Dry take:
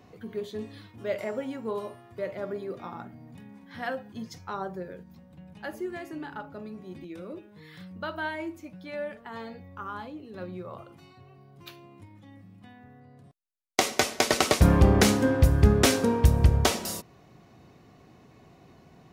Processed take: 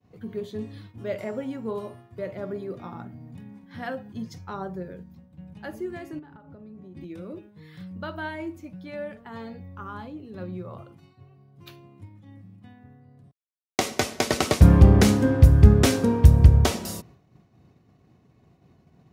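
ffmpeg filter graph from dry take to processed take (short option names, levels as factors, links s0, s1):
-filter_complex "[0:a]asettb=1/sr,asplit=3[s0][s1][s2];[s0]atrim=end=6.194[s3];[s1]atrim=start=6.19:end=6.97,asetpts=PTS-STARTPTS,afade=t=in:d=0.004:c=qsin,afade=t=out:st=0.776:d=0.004:c=qsin,acompressor=threshold=0.00708:ratio=20:attack=3.2:release=140:knee=1:detection=peak,highshelf=f=2300:g=-10.5[s4];[s2]atrim=start=6.966[s5];[s3][s4]acrossfade=d=0.004:c1=hsin:c2=qsin[s6];[s6][s5]acrossfade=d=0.004:c1=qsin:c2=hsin,highpass=58,agate=range=0.0224:threshold=0.00447:ratio=3:detection=peak,lowshelf=f=230:g=11.5,volume=0.794"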